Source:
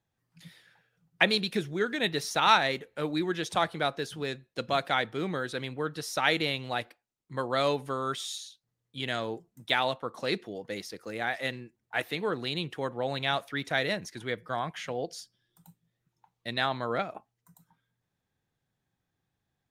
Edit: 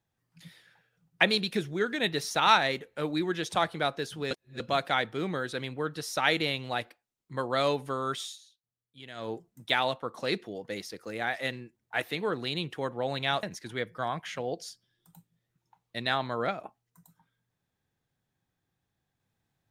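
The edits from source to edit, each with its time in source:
0:04.31–0:04.60: reverse
0:08.22–0:09.30: duck −13 dB, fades 0.15 s
0:13.43–0:13.94: remove

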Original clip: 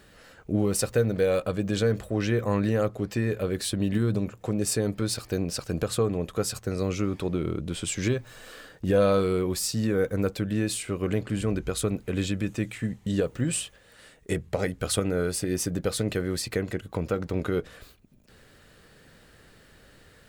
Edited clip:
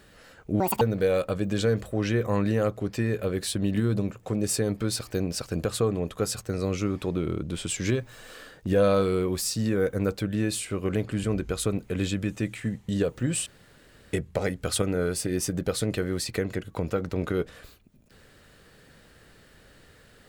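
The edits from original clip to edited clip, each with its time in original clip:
0:00.60–0:00.99: play speed 184%
0:13.64–0:14.31: fill with room tone

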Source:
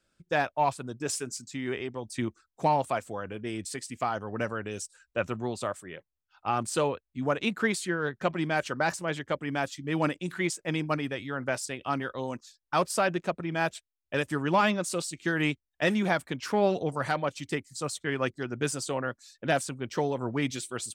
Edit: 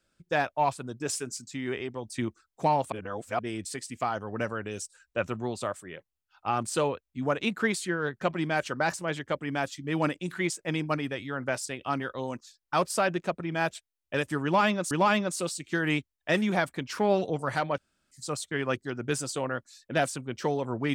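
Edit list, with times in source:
0:02.92–0:03.39: reverse
0:14.44–0:14.91: repeat, 2 plays
0:17.31–0:17.64: fill with room tone

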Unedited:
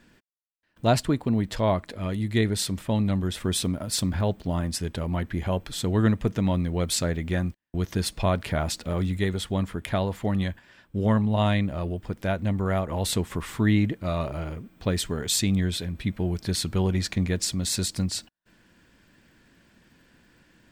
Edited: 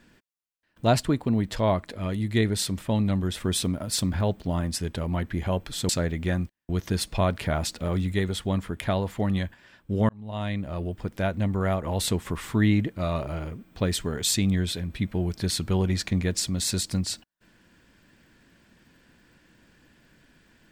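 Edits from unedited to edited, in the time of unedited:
0:05.89–0:06.94: remove
0:11.14–0:11.98: fade in

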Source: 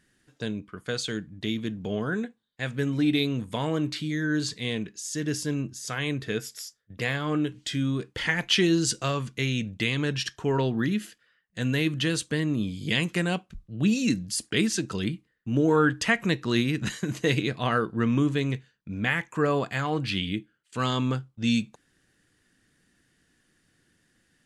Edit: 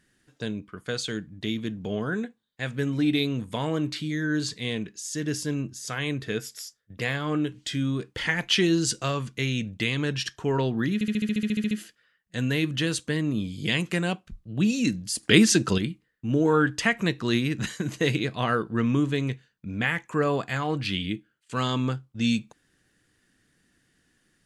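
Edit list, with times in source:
0:10.94: stutter 0.07 s, 12 plays
0:14.46–0:15.01: clip gain +7.5 dB

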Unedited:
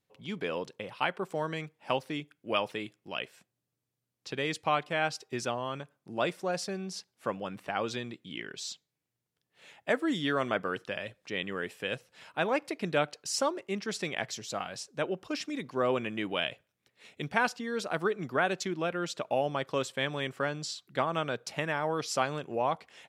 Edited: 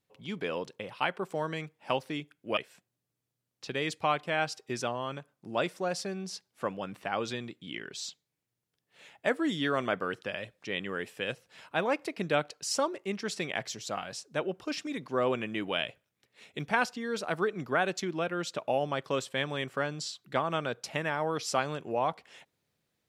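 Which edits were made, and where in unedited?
0:02.57–0:03.20: remove

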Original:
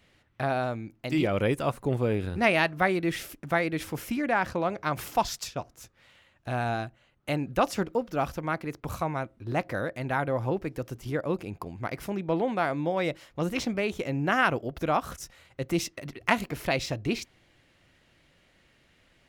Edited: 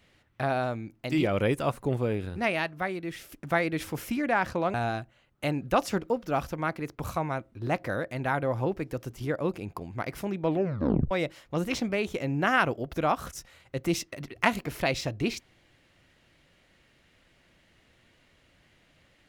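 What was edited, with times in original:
0:01.81–0:03.32: fade out quadratic, to −8 dB
0:04.74–0:06.59: remove
0:12.32: tape stop 0.64 s

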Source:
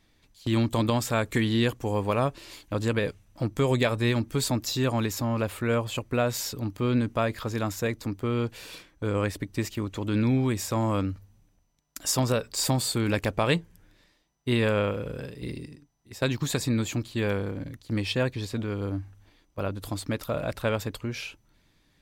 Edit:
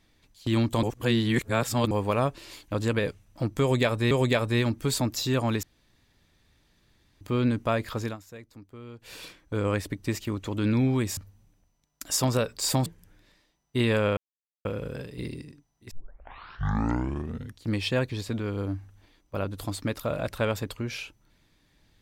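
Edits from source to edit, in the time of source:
0:00.83–0:01.91: reverse
0:03.61–0:04.11: repeat, 2 plays
0:05.13–0:06.71: fill with room tone
0:07.54–0:08.63: duck −16.5 dB, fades 0.13 s
0:10.67–0:11.12: remove
0:12.81–0:13.58: remove
0:14.89: splice in silence 0.48 s
0:16.15: tape start 1.73 s

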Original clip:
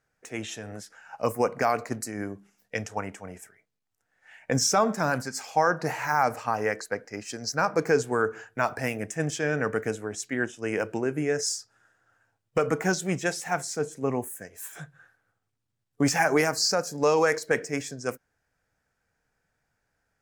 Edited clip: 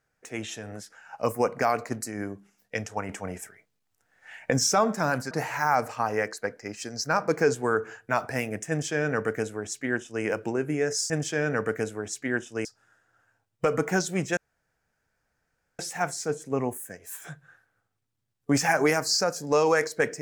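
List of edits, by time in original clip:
0:03.09–0:04.51: clip gain +6 dB
0:05.31–0:05.79: remove
0:09.17–0:10.72: duplicate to 0:11.58
0:13.30: splice in room tone 1.42 s

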